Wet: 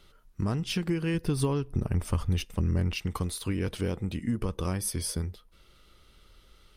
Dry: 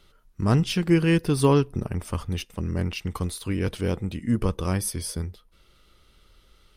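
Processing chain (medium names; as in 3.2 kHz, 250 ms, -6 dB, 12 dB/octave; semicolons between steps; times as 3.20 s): compression 10:1, threshold -25 dBFS, peak gain reduction 11.5 dB; 1.14–2.96 s: bass shelf 100 Hz +9 dB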